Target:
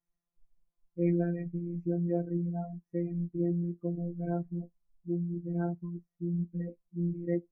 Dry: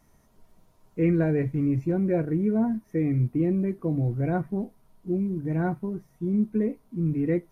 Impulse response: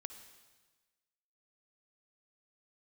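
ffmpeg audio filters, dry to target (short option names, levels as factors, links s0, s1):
-af "afftfilt=real='hypot(re,im)*cos(PI*b)':imag='0':win_size=1024:overlap=0.75,afftdn=nr=22:nf=-36,volume=0.562"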